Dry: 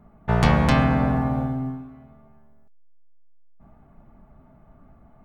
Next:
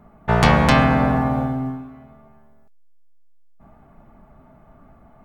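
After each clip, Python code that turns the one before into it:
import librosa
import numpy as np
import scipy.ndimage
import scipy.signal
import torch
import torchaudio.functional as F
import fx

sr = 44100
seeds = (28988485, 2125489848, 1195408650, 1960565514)

y = fx.low_shelf(x, sr, hz=290.0, db=-6.0)
y = y * 10.0 ** (6.5 / 20.0)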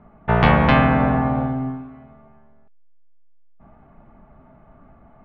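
y = scipy.signal.sosfilt(scipy.signal.butter(4, 3200.0, 'lowpass', fs=sr, output='sos'), x)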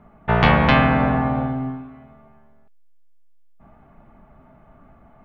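y = fx.high_shelf(x, sr, hz=2900.0, db=8.0)
y = y * 10.0 ** (-1.0 / 20.0)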